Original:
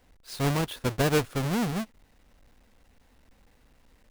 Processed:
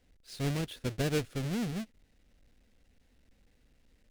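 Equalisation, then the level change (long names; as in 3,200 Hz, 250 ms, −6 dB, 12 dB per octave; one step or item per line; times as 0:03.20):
parametric band 990 Hz −10.5 dB 1.1 octaves
high-shelf EQ 12,000 Hz −9 dB
−5.0 dB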